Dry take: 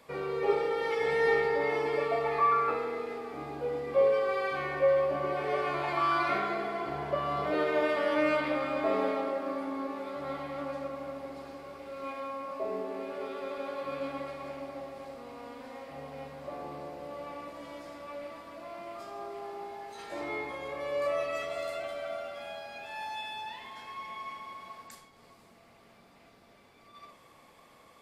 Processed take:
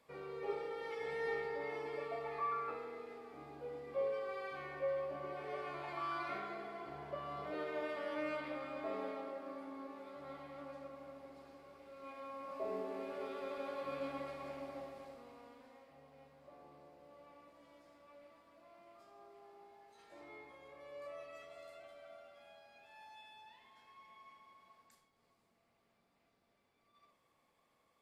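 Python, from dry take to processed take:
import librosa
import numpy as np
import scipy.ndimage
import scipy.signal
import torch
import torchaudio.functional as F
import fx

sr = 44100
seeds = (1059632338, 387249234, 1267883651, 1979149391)

y = fx.gain(x, sr, db=fx.line((12.0, -13.0), (12.69, -6.0), (14.8, -6.0), (15.99, -18.5)))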